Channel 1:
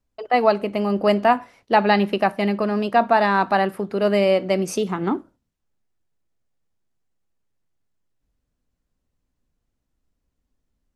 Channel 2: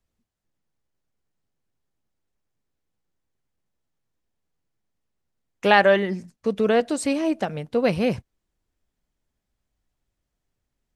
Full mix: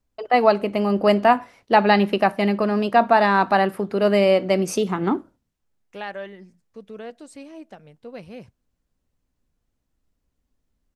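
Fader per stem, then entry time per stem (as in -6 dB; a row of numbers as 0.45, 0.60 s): +1.0, -17.0 dB; 0.00, 0.30 s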